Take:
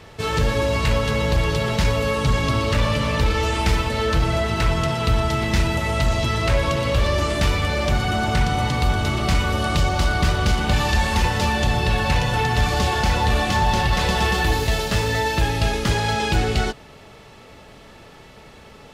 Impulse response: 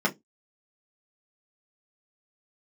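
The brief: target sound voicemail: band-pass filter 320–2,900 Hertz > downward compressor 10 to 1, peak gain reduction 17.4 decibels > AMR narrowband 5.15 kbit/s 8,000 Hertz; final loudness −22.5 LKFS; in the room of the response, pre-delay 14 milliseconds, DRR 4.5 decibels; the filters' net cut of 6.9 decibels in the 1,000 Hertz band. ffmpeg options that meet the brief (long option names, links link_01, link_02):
-filter_complex "[0:a]equalizer=frequency=1000:width_type=o:gain=-9,asplit=2[link_01][link_02];[1:a]atrim=start_sample=2205,adelay=14[link_03];[link_02][link_03]afir=irnorm=-1:irlink=0,volume=-16.5dB[link_04];[link_01][link_04]amix=inputs=2:normalize=0,highpass=320,lowpass=2900,acompressor=threshold=-39dB:ratio=10,volume=23dB" -ar 8000 -c:a libopencore_amrnb -b:a 5150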